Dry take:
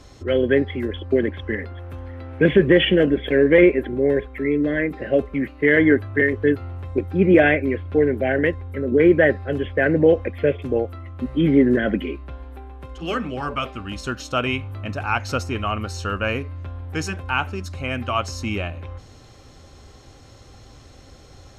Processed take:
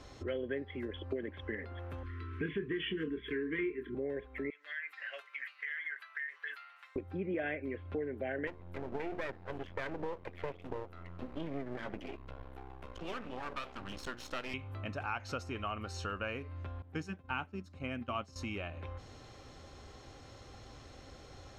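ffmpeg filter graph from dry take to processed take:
ffmpeg -i in.wav -filter_complex "[0:a]asettb=1/sr,asplit=3[link_01][link_02][link_03];[link_01]atrim=end=2.034[link_04];[link_02]atrim=start=2.03:end=3.95,asetpts=PTS-STARTPTS,afade=type=in:duration=0.004:curve=qsin,afade=type=out:start_time=1.916:duration=0.004:curve=qsin,asuperstop=centerf=680:order=20:qfactor=1.3,asplit=2[link_05][link_06];[link_06]adelay=25,volume=-7.5dB[link_07];[link_05][link_07]amix=inputs=2:normalize=0,atrim=end_sample=84672[link_08];[link_03]atrim=start=3.946[link_09];[link_04][link_08]acrossfade=duration=0.004:curve1=hsin:curve2=qsin[link_10];[link_10][link_09]acrossfade=duration=0.004:curve1=qsin:curve2=hsin,asettb=1/sr,asplit=3[link_11][link_12][link_13];[link_11]atrim=end=4.504[link_14];[link_12]atrim=start=4.5:end=6.96,asetpts=PTS-STARTPTS,afade=type=in:duration=0.004:curve=qsin,afade=type=out:start_time=2.456:duration=0.004:curve=qsin,highpass=frequency=1300:width=0.5412,highpass=frequency=1300:width=1.3066,aecho=1:1:7.1:0.45,atrim=end_sample=108486,acompressor=threshold=-32dB:ratio=6:attack=3.2:release=140:knee=1:detection=peak[link_15];[link_13]atrim=start=6.956[link_16];[link_14][link_15]acrossfade=duration=0.004:curve1=hsin:curve2=qsin[link_17];[link_17][link_16]acrossfade=duration=0.004:curve1=qsin:curve2=hsin,asettb=1/sr,asplit=3[link_18][link_19][link_20];[link_18]atrim=end=8.474[link_21];[link_19]atrim=start=8.47:end=14.54,asetpts=PTS-STARTPTS,afade=type=in:duration=0.004:curve=qsin,afade=type=out:start_time=6.066:duration=0.004:curve=qsin,bandreject=frequency=60:width_type=h:width=6,bandreject=frequency=120:width_type=h:width=6,bandreject=frequency=180:width_type=h:width=6,bandreject=frequency=240:width_type=h:width=6,bandreject=frequency=300:width_type=h:width=6,bandreject=frequency=360:width_type=h:width=6,aeval=exprs='max(val(0),0)':channel_layout=same[link_22];[link_20]atrim=start=14.536[link_23];[link_21][link_22]acrossfade=duration=0.004:curve1=hsin:curve2=qsin[link_24];[link_24][link_23]acrossfade=duration=0.004:curve1=qsin:curve2=hsin,asettb=1/sr,asplit=3[link_25][link_26][link_27];[link_25]atrim=end=16.824[link_28];[link_26]atrim=start=16.82:end=18.36,asetpts=PTS-STARTPTS,afade=type=in:duration=0.004:curve=qsin,afade=type=out:start_time=1.536:duration=0.004:curve=qsin,agate=range=-33dB:threshold=-23dB:ratio=3:release=100:detection=peak,equalizer=frequency=200:width_type=o:width=1.3:gain=11[link_29];[link_27]atrim=start=18.356[link_30];[link_28][link_29]acrossfade=duration=0.004:curve1=hsin:curve2=qsin[link_31];[link_31][link_30]acrossfade=duration=0.004:curve1=qsin:curve2=hsin,highshelf=frequency=6600:gain=-10.5,acompressor=threshold=-32dB:ratio=4,lowshelf=frequency=300:gain=-5.5,volume=-3dB" out.wav

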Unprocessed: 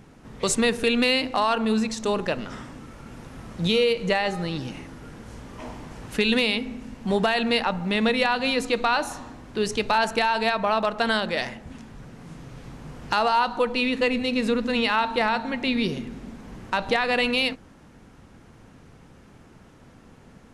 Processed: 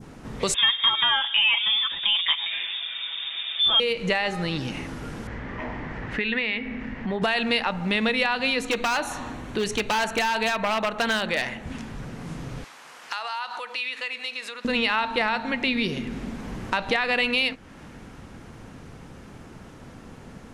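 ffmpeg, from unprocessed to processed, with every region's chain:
ffmpeg -i in.wav -filter_complex "[0:a]asettb=1/sr,asplit=3[link_01][link_02][link_03];[link_01]atrim=end=0.544[link_04];[link_02]atrim=start=0.54:end=3.8,asetpts=PTS-STARTPTS,afade=type=in:duration=0.004:curve=qsin,afade=type=out:start_time=3.256:duration=0.004:curve=qsin,aecho=1:1:6.3:0.86,atrim=end_sample=143766,lowpass=frequency=3100:width_type=q:width=0.5098,lowpass=frequency=3100:width_type=q:width=0.6013,lowpass=frequency=3100:width_type=q:width=0.9,lowpass=frequency=3100:width_type=q:width=2.563,afreqshift=-3700[link_05];[link_03]atrim=start=3.796[link_06];[link_04][link_05]acrossfade=duration=0.004:curve1=hsin:curve2=qsin[link_07];[link_07][link_06]acrossfade=duration=0.004:curve1=qsin:curve2=hsin,asettb=1/sr,asplit=3[link_08][link_09][link_10];[link_08]atrim=end=5.274[link_11];[link_09]atrim=start=5.27:end=7.22,asetpts=PTS-STARTPTS,afade=type=in:duration=0.004:curve=qsin,afade=type=out:start_time=1.946:duration=0.004:curve=qsin,lowpass=2700,equalizer=frequency=1900:width_type=o:width=0.47:gain=11,acompressor=threshold=-37dB:ratio=1.5:attack=3.2:release=140:knee=1:detection=peak[link_12];[link_10]atrim=start=7.216[link_13];[link_11][link_12]acrossfade=duration=0.004:curve1=hsin:curve2=qsin[link_14];[link_14][link_13]acrossfade=duration=0.004:curve1=qsin:curve2=hsin,asettb=1/sr,asplit=3[link_15][link_16][link_17];[link_15]atrim=end=8.624[link_18];[link_16]atrim=start=8.62:end=11.65,asetpts=PTS-STARTPTS,afade=type=in:duration=0.004:curve=qsin,afade=type=out:start_time=3.026:duration=0.004:curve=qsin,bandreject=frequency=5000:width=6.5,aeval=exprs='0.141*(abs(mod(val(0)/0.141+3,4)-2)-1)':channel_layout=same[link_19];[link_17]atrim=start=11.646[link_20];[link_18][link_19]acrossfade=duration=0.004:curve1=hsin:curve2=qsin[link_21];[link_21][link_20]acrossfade=duration=0.004:curve1=qsin:curve2=hsin,asettb=1/sr,asplit=3[link_22][link_23][link_24];[link_22]atrim=end=12.644[link_25];[link_23]atrim=start=12.64:end=14.65,asetpts=PTS-STARTPTS,afade=type=in:duration=0.004:curve=qsin,afade=type=out:start_time=2.006:duration=0.004:curve=qsin,acompressor=threshold=-30dB:ratio=4:attack=3.2:release=140:knee=1:detection=peak,highpass=1100[link_26];[link_24]atrim=start=14.646[link_27];[link_25][link_26]acrossfade=duration=0.004:curve1=hsin:curve2=qsin[link_28];[link_28][link_27]acrossfade=duration=0.004:curve1=qsin:curve2=hsin,adynamicequalizer=threshold=0.0126:dfrequency=2300:dqfactor=0.87:tfrequency=2300:tqfactor=0.87:attack=5:release=100:ratio=0.375:range=3:mode=boostabove:tftype=bell,acompressor=threshold=-35dB:ratio=2,volume=6.5dB" out.wav

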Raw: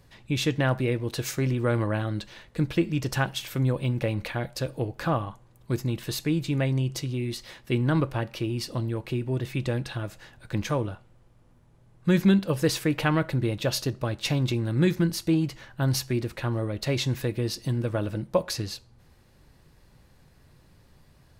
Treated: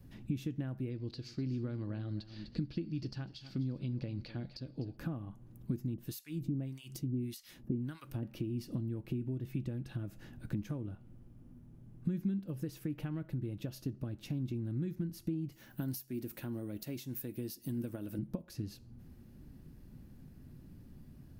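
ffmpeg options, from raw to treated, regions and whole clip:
ffmpeg -i in.wav -filter_complex "[0:a]asettb=1/sr,asplit=3[link_01][link_02][link_03];[link_01]atrim=end=0.904[link_04];[link_02]atrim=start=0.9:end=4.97,asetpts=PTS-STARTPTS,afade=type=in:duration=0.004:curve=qsin,afade=type=out:start_time=4.066:duration=0.004:curve=qsin,lowpass=frequency=4600:width_type=q:width=10,aecho=1:1:249:0.158,atrim=end_sample=179487[link_05];[link_03]atrim=start=4.966[link_06];[link_04][link_05]acrossfade=duration=0.004:curve1=hsin:curve2=qsin[link_07];[link_07][link_06]acrossfade=duration=0.004:curve1=qsin:curve2=hsin,asettb=1/sr,asplit=3[link_08][link_09][link_10];[link_08]atrim=end=5.944[link_11];[link_09]atrim=start=5.94:end=8.23,asetpts=PTS-STARTPTS,afade=type=in:duration=0.004:curve=qsin,afade=type=out:start_time=2.286:duration=0.004:curve=qsin,highshelf=frequency=3300:gain=10.5,acrossover=split=990[link_12][link_13];[link_12]aeval=exprs='val(0)*(1-1/2+1/2*cos(2*PI*1.7*n/s))':channel_layout=same[link_14];[link_13]aeval=exprs='val(0)*(1-1/2-1/2*cos(2*PI*1.7*n/s))':channel_layout=same[link_15];[link_14][link_15]amix=inputs=2:normalize=0[link_16];[link_10]atrim=start=8.226[link_17];[link_11][link_16]acrossfade=duration=0.004:curve1=hsin:curve2=qsin[link_18];[link_18][link_17]acrossfade=duration=0.004:curve1=qsin:curve2=hsin,asettb=1/sr,asplit=3[link_19][link_20][link_21];[link_19]atrim=end=15.524[link_22];[link_20]atrim=start=15.52:end=18.19,asetpts=PTS-STARTPTS,afade=type=in:duration=0.004:curve=qsin,afade=type=out:start_time=2.666:duration=0.004:curve=qsin,aemphasis=mode=production:type=bsi,bandreject=frequency=1200:width=20[link_23];[link_21]atrim=start=18.186[link_24];[link_22][link_23]acrossfade=duration=0.004:curve1=hsin:curve2=qsin[link_25];[link_25][link_24]acrossfade=duration=0.004:curve1=qsin:curve2=hsin,adynamicequalizer=threshold=0.00794:dfrequency=240:dqfactor=2.3:tfrequency=240:tqfactor=2.3:attack=5:release=100:ratio=0.375:range=4:mode=cutabove:tftype=bell,acompressor=threshold=-38dB:ratio=12,equalizer=frequency=250:width_type=o:width=1:gain=10,equalizer=frequency=500:width_type=o:width=1:gain=-8,equalizer=frequency=1000:width_type=o:width=1:gain=-10,equalizer=frequency=2000:width_type=o:width=1:gain=-8,equalizer=frequency=4000:width_type=o:width=1:gain=-10,equalizer=frequency=8000:width_type=o:width=1:gain=-10,volume=2dB" out.wav

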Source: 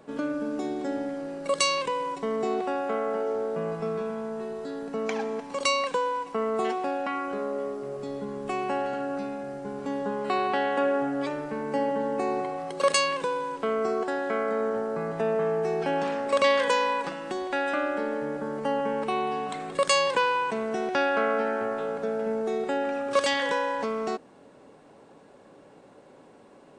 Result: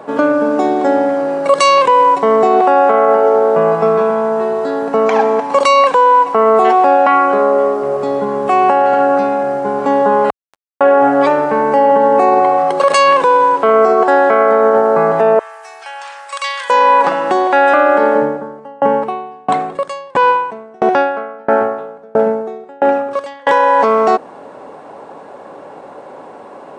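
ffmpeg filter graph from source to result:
ffmpeg -i in.wav -filter_complex "[0:a]asettb=1/sr,asplit=3[link_01][link_02][link_03];[link_01]atrim=end=10.304[link_04];[link_02]atrim=start=10.3:end=10.81,asetpts=PTS-STARTPTS,afade=type=in:duration=0.004:curve=qsin,afade=type=out:start_time=0.506:duration=0.004:curve=qsin,highpass=frequency=2300:width_type=q:width=3.1,equalizer=frequency=3100:width_type=o:width=0.3:gain=-13.5,acrusher=bits=2:mix=0:aa=0.5[link_05];[link_03]atrim=start=10.806[link_06];[link_04][link_05]acrossfade=duration=0.004:curve1=hsin:curve2=qsin[link_07];[link_07][link_06]acrossfade=duration=0.004:curve1=qsin:curve2=hsin,asettb=1/sr,asplit=3[link_08][link_09][link_10];[link_08]atrim=end=15.394[link_11];[link_09]atrim=start=15.39:end=16.7,asetpts=PTS-STARTPTS,afade=type=in:duration=0.004:curve=qsin,afade=type=out:start_time=1.306:duration=0.004:curve=qsin,highpass=920,aderivative[link_12];[link_10]atrim=start=16.696[link_13];[link_11][link_12]acrossfade=duration=0.004:curve1=hsin:curve2=qsin[link_14];[link_14][link_13]acrossfade=duration=0.004:curve1=qsin:curve2=hsin,asettb=1/sr,asplit=3[link_15][link_16][link_17];[link_15]atrim=end=18.154[link_18];[link_16]atrim=start=18.15:end=23.47,asetpts=PTS-STARTPTS,afade=type=in:duration=0.004:curve=qsin,afade=type=out:start_time=5.316:duration=0.004:curve=qsin,lowshelf=frequency=360:gain=9.5,aeval=exprs='val(0)*pow(10,-35*if(lt(mod(1.5*n/s,1),2*abs(1.5)/1000),1-mod(1.5*n/s,1)/(2*abs(1.5)/1000),(mod(1.5*n/s,1)-2*abs(1.5)/1000)/(1-2*abs(1.5)/1000))/20)':channel_layout=same[link_19];[link_17]atrim=start=23.466[link_20];[link_18][link_19]acrossfade=duration=0.004:curve1=hsin:curve2=qsin[link_21];[link_21][link_20]acrossfade=duration=0.004:curve1=qsin:curve2=hsin,highpass=48,equalizer=frequency=860:width_type=o:width=2.3:gain=14.5,alimiter=level_in=10dB:limit=-1dB:release=50:level=0:latency=1,volume=-1dB" out.wav

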